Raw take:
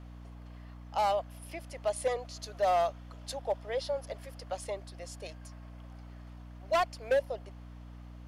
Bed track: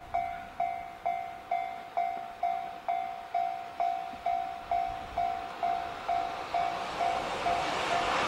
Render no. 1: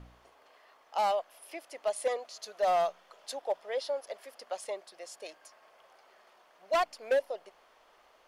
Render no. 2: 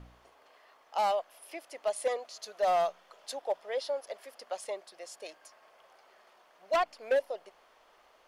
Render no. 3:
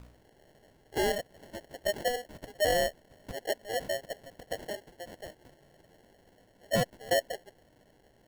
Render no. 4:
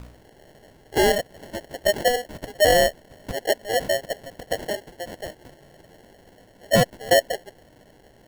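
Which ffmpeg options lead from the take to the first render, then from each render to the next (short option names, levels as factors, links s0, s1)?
-af "bandreject=f=60:t=h:w=4,bandreject=f=120:t=h:w=4,bandreject=f=180:t=h:w=4,bandreject=f=240:t=h:w=4,bandreject=f=300:t=h:w=4"
-filter_complex "[0:a]asettb=1/sr,asplit=3[s0][s1][s2];[s0]atrim=end=6.764[s3];[s1]atrim=start=6.76:end=7.16,asetpts=PTS-STARTPTS,afade=t=in:d=0.004:c=qsin,afade=t=out:st=0.396:d=0.004:c=qsin,acrossover=split=4100[s4][s5];[s5]acompressor=threshold=0.002:ratio=4:attack=1:release=60[s6];[s4][s6]amix=inputs=2:normalize=0[s7];[s2]atrim=start=7.156[s8];[s3][s7]acrossfade=d=0.004:c1=hsin:c2=qsin[s9];[s9][s8]acrossfade=d=0.004:c1=qsin:c2=hsin"
-af "acrusher=samples=36:mix=1:aa=0.000001"
-af "volume=3.16"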